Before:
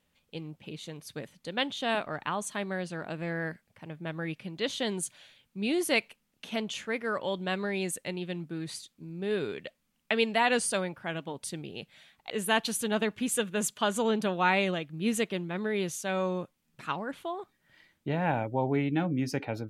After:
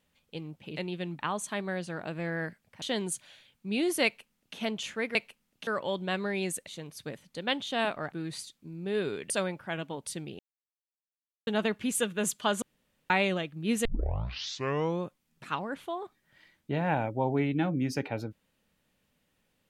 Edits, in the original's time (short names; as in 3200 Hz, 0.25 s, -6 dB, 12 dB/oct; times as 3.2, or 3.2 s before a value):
0.77–2.22 swap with 8.06–8.48
3.85–4.73 cut
5.96–6.48 copy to 7.06
9.66–10.67 cut
11.76–12.84 mute
13.99–14.47 room tone
15.22 tape start 1.16 s